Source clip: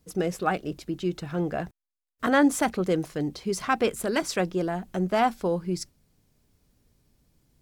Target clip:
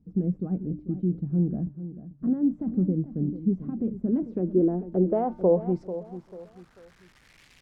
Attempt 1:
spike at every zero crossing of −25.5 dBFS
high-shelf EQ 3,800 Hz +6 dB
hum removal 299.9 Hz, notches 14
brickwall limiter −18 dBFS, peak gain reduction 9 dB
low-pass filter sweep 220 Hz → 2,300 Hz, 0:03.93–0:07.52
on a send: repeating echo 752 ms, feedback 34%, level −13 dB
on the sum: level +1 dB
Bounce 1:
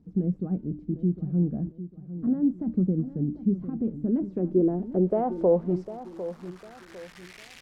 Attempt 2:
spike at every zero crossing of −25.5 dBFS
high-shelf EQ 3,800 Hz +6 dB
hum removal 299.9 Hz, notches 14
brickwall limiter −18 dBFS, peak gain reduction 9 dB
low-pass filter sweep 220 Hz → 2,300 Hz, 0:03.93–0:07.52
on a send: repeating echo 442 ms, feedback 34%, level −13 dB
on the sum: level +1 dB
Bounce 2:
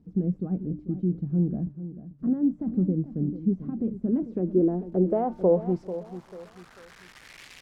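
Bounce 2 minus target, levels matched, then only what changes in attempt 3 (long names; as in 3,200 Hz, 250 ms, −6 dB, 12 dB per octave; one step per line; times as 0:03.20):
spike at every zero crossing: distortion +9 dB
change: spike at every zero crossing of −35 dBFS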